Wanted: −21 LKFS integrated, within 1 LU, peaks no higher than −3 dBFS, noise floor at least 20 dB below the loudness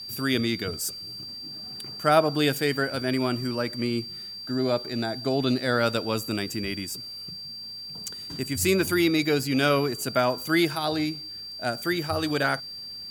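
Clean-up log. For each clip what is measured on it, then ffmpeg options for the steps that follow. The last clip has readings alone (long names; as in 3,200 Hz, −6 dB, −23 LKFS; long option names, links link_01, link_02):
interfering tone 4,700 Hz; level of the tone −36 dBFS; integrated loudness −26.5 LKFS; sample peak −7.0 dBFS; target loudness −21.0 LKFS
→ -af "bandreject=frequency=4700:width=30"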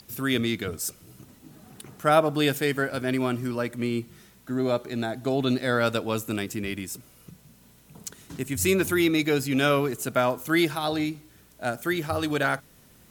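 interfering tone none found; integrated loudness −26.0 LKFS; sample peak −6.5 dBFS; target loudness −21.0 LKFS
→ -af "volume=5dB,alimiter=limit=-3dB:level=0:latency=1"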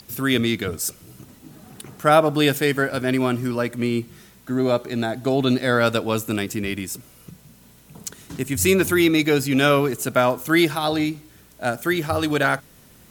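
integrated loudness −21.0 LKFS; sample peak −3.0 dBFS; background noise floor −51 dBFS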